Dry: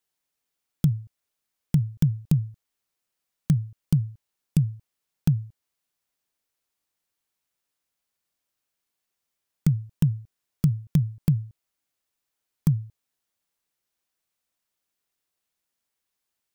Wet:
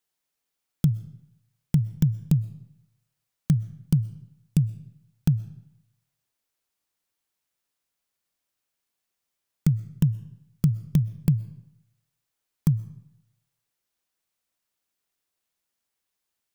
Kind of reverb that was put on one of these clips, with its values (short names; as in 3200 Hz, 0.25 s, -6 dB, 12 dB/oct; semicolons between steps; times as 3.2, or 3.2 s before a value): digital reverb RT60 0.8 s, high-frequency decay 0.8×, pre-delay 85 ms, DRR 19 dB